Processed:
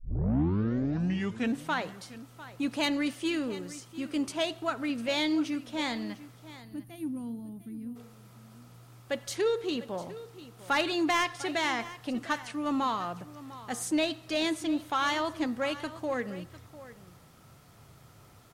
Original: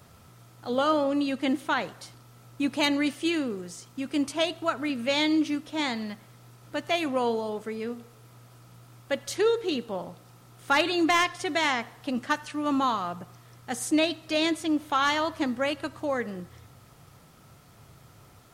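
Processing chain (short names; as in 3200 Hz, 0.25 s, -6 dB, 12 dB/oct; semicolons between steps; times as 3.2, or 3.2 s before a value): tape start at the beginning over 1.71 s; spectral gain 6.61–7.96, 340–8800 Hz -23 dB; in parallel at -5 dB: soft clip -27.5 dBFS, distortion -8 dB; on the sum: echo 0.7 s -16.5 dB; gain -6 dB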